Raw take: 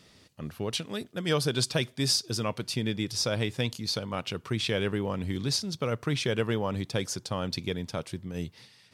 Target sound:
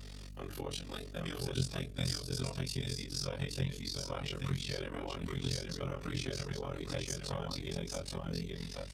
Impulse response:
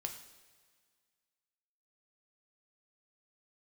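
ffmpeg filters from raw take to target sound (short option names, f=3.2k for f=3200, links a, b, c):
-filter_complex "[0:a]afftfilt=real='re':imag='-im':win_size=2048:overlap=0.75,bandreject=f=60:t=h:w=6,bandreject=f=120:t=h:w=6,bandreject=f=180:t=h:w=6,bandreject=f=240:t=h:w=6,bandreject=f=300:t=h:w=6,bandreject=f=360:t=h:w=6,bandreject=f=420:t=h:w=6,bandreject=f=480:t=h:w=6,bandreject=f=540:t=h:w=6,bandreject=f=600:t=h:w=6,flanger=delay=1.1:depth=8.4:regen=-50:speed=0.98:shape=triangular,acrossover=split=140[a][b];[b]acompressor=threshold=-51dB:ratio=12[c];[a][c]amix=inputs=2:normalize=0,bass=f=250:g=-13,treble=f=4k:g=3,acontrast=45,highpass=f=53:w=0.5412,highpass=f=53:w=1.3066,aecho=1:1:7.3:0.89,aecho=1:1:827:0.631,tremolo=f=44:d=0.919,aeval=exprs='val(0)+0.001*(sin(2*PI*50*n/s)+sin(2*PI*2*50*n/s)/2+sin(2*PI*3*50*n/s)/3+sin(2*PI*4*50*n/s)/4+sin(2*PI*5*50*n/s)/5)':c=same,lowshelf=f=340:g=7,volume=6.5dB"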